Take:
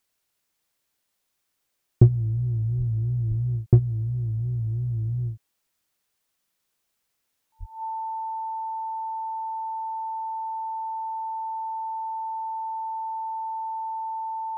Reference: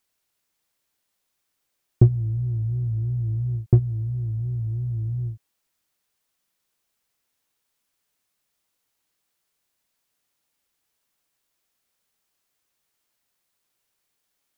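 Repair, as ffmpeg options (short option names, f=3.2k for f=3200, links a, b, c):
-filter_complex "[0:a]bandreject=f=890:w=30,asplit=3[a][b][c];[a]afade=t=out:st=2.77:d=0.02[d];[b]highpass=f=140:w=0.5412,highpass=f=140:w=1.3066,afade=t=in:st=2.77:d=0.02,afade=t=out:st=2.89:d=0.02[e];[c]afade=t=in:st=2.89:d=0.02[f];[d][e][f]amix=inputs=3:normalize=0,asplit=3[g][h][i];[g]afade=t=out:st=3.28:d=0.02[j];[h]highpass=f=140:w=0.5412,highpass=f=140:w=1.3066,afade=t=in:st=3.28:d=0.02,afade=t=out:st=3.4:d=0.02[k];[i]afade=t=in:st=3.4:d=0.02[l];[j][k][l]amix=inputs=3:normalize=0,asplit=3[m][n][o];[m]afade=t=out:st=7.59:d=0.02[p];[n]highpass=f=140:w=0.5412,highpass=f=140:w=1.3066,afade=t=in:st=7.59:d=0.02,afade=t=out:st=7.71:d=0.02[q];[o]afade=t=in:st=7.71:d=0.02[r];[p][q][r]amix=inputs=3:normalize=0"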